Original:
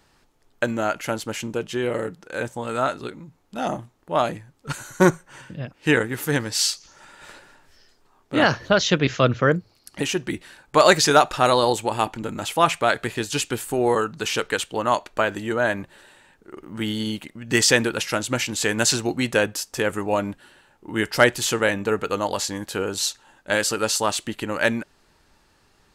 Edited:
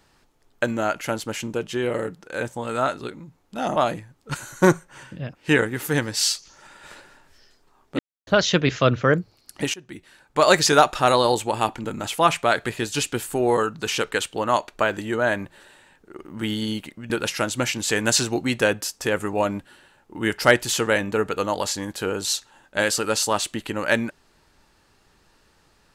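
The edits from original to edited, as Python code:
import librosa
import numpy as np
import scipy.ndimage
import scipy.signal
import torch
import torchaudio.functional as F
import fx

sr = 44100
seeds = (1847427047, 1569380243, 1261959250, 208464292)

y = fx.edit(x, sr, fx.cut(start_s=3.76, length_s=0.38),
    fx.silence(start_s=8.37, length_s=0.28),
    fx.fade_in_from(start_s=10.12, length_s=0.92, floor_db=-20.5),
    fx.cut(start_s=17.48, length_s=0.35), tone=tone)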